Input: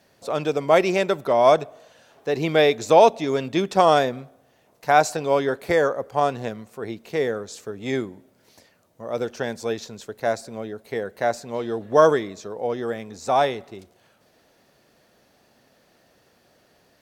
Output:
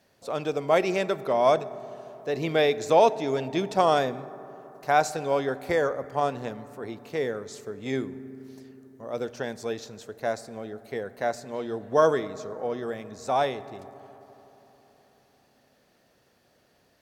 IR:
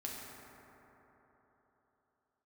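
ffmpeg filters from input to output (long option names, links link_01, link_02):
-filter_complex "[0:a]asplit=2[link_01][link_02];[1:a]atrim=start_sample=2205,lowshelf=frequency=210:gain=7.5[link_03];[link_02][link_03]afir=irnorm=-1:irlink=0,volume=-14dB[link_04];[link_01][link_04]amix=inputs=2:normalize=0,volume=-6dB"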